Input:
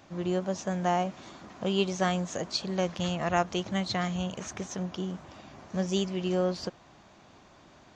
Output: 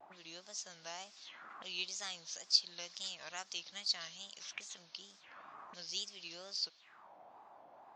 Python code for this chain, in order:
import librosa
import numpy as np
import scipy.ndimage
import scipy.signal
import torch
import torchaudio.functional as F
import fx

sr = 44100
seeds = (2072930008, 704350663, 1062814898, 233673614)

y = fx.auto_wah(x, sr, base_hz=640.0, top_hz=4800.0, q=3.9, full_db=-33.0, direction='up')
y = fx.wow_flutter(y, sr, seeds[0], rate_hz=2.1, depth_cents=150.0)
y = y * 10.0 ** (5.5 / 20.0)